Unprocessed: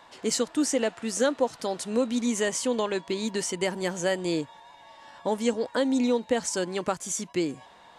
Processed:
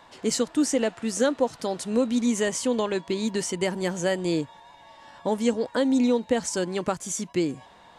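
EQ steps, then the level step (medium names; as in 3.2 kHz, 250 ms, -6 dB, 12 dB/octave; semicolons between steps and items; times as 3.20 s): bass shelf 250 Hz +6.5 dB; 0.0 dB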